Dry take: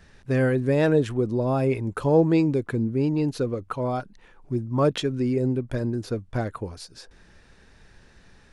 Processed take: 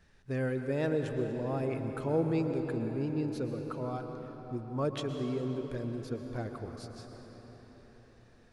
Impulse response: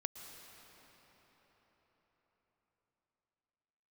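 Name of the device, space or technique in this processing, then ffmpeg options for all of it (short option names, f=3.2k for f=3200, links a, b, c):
cathedral: -filter_complex "[1:a]atrim=start_sample=2205[a];[0:a][a]afir=irnorm=-1:irlink=0,volume=-8.5dB"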